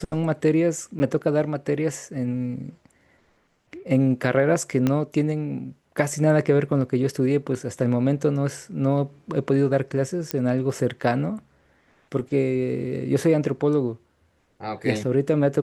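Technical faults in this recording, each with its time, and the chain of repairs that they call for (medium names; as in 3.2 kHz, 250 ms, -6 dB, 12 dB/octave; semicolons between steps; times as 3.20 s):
0.99–1.00 s: dropout 10 ms
4.87 s: pop -10 dBFS
10.31 s: pop -9 dBFS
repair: de-click; interpolate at 0.99 s, 10 ms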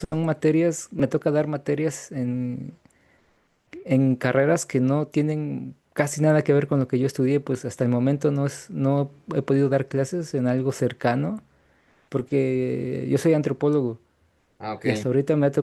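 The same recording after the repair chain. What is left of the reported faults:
4.87 s: pop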